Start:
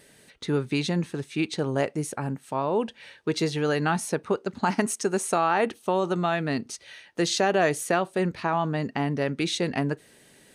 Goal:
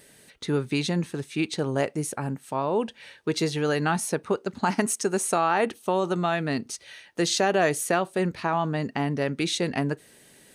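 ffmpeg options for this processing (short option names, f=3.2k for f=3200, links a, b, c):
-af "highshelf=f=8.9k:g=6.5"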